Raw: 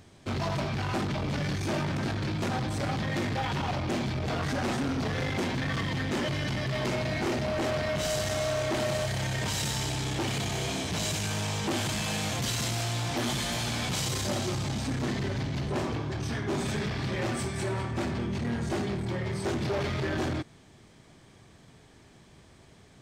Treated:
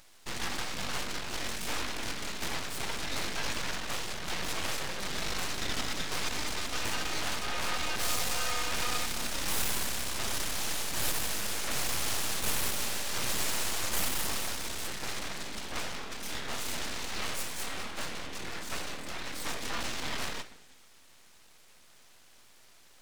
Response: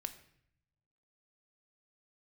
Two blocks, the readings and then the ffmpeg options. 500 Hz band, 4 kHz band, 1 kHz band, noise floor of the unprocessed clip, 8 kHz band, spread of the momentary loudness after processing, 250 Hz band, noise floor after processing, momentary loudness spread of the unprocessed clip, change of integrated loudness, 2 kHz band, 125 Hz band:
-10.0 dB, +0.5 dB, -3.5 dB, -56 dBFS, +3.0 dB, 7 LU, -12.5 dB, -57 dBFS, 3 LU, -3.0 dB, -1.0 dB, -15.5 dB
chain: -filter_complex "[0:a]tiltshelf=f=700:g=-8.5[s0];[1:a]atrim=start_sample=2205[s1];[s0][s1]afir=irnorm=-1:irlink=0,aeval=exprs='abs(val(0))':c=same"

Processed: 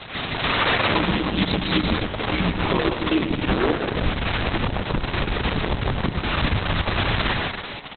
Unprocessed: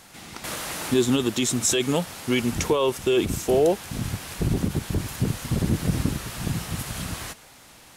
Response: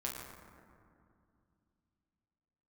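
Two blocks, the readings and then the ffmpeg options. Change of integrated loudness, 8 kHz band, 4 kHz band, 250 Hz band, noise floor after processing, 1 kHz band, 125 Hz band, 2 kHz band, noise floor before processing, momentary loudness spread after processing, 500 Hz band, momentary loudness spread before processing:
+2.0 dB, under -40 dB, +6.0 dB, +1.5 dB, -33 dBFS, +9.0 dB, +2.0 dB, +10.5 dB, -50 dBFS, 5 LU, -1.5 dB, 10 LU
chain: -filter_complex "[0:a]acrossover=split=3900[s0][s1];[s1]acompressor=threshold=0.00891:ratio=4:attack=1:release=60[s2];[s0][s2]amix=inputs=2:normalize=0,highpass=100,bandreject=f=50:t=h:w=6,bandreject=f=100:t=h:w=6,bandreject=f=150:t=h:w=6,bandreject=f=200:t=h:w=6,bandreject=f=250:t=h:w=6,acompressor=threshold=0.0224:ratio=5,aeval=exprs='(mod(23.7*val(0)+1,2)-1)/23.7':c=same,afreqshift=-67,aeval=exprs='0.133*sin(PI/2*2.51*val(0)/0.133)':c=same,aecho=1:1:150|255|328.5|380|416:0.631|0.398|0.251|0.158|0.1,aresample=22050,aresample=44100,volume=1.58" -ar 48000 -c:a libopus -b:a 6k

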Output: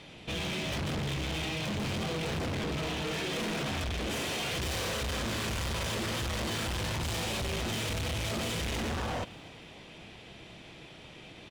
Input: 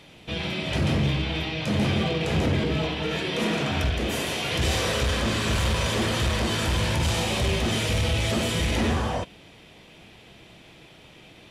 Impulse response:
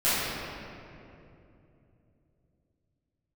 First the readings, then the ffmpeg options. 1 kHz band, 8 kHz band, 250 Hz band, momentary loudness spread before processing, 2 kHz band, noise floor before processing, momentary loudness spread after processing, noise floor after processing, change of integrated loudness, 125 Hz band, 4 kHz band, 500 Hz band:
-7.0 dB, -5.0 dB, -9.0 dB, 4 LU, -7.0 dB, -50 dBFS, 16 LU, -50 dBFS, -8.0 dB, -9.5 dB, -7.0 dB, -8.0 dB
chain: -filter_complex "[0:a]lowpass=9400,asoftclip=type=hard:threshold=0.0251,asplit=2[s0][s1];[s1]asplit=4[s2][s3][s4][s5];[s2]adelay=293,afreqshift=38,volume=0.0841[s6];[s3]adelay=586,afreqshift=76,volume=0.0432[s7];[s4]adelay=879,afreqshift=114,volume=0.0219[s8];[s5]adelay=1172,afreqshift=152,volume=0.0112[s9];[s6][s7][s8][s9]amix=inputs=4:normalize=0[s10];[s0][s10]amix=inputs=2:normalize=0"

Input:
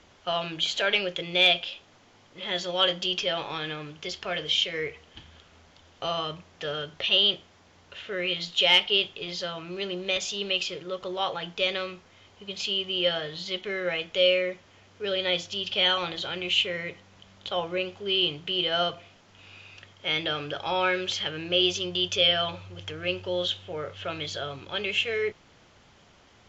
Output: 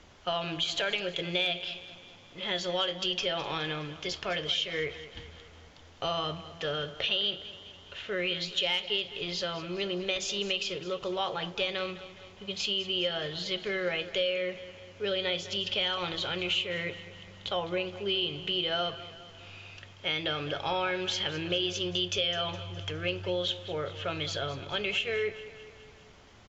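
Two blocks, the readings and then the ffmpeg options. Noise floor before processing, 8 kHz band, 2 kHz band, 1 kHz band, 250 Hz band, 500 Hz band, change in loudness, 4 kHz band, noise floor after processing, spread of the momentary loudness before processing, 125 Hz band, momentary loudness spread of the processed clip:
-58 dBFS, no reading, -4.5 dB, -3.5 dB, -1.5 dB, -3.5 dB, -4.5 dB, -5.0 dB, -53 dBFS, 14 LU, +0.5 dB, 15 LU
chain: -filter_complex "[0:a]acompressor=threshold=0.0447:ratio=5,lowshelf=f=85:g=7.5,asplit=2[s0][s1];[s1]aecho=0:1:207|414|621|828|1035:0.178|0.0978|0.0538|0.0296|0.0163[s2];[s0][s2]amix=inputs=2:normalize=0"

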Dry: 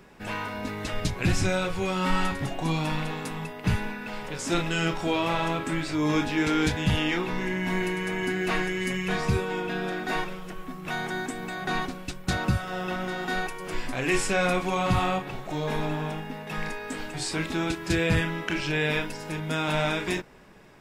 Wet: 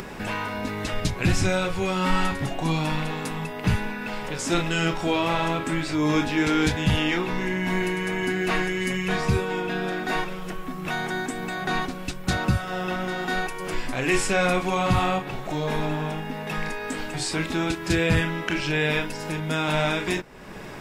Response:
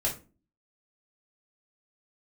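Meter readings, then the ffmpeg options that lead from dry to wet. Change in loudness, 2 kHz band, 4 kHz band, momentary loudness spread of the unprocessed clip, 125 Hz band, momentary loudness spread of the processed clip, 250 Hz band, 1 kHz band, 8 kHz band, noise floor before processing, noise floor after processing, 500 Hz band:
+2.5 dB, +2.5 dB, +2.5 dB, 9 LU, +2.5 dB, 8 LU, +2.5 dB, +2.5 dB, +3.0 dB, -41 dBFS, -35 dBFS, +2.5 dB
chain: -af "acompressor=mode=upward:threshold=0.0398:ratio=2.5,volume=1.33"

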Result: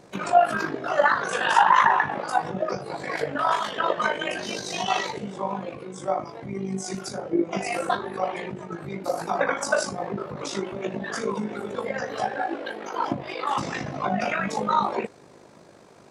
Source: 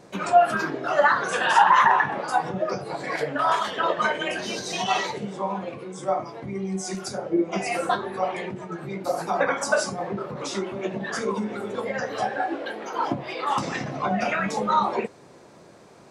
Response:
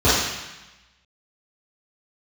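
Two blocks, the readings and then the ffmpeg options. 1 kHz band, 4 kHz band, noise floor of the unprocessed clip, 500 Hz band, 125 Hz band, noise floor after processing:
-1.0 dB, -1.0 dB, -50 dBFS, -1.0 dB, -1.0 dB, -51 dBFS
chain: -af "tremolo=f=51:d=0.571,volume=1.19"

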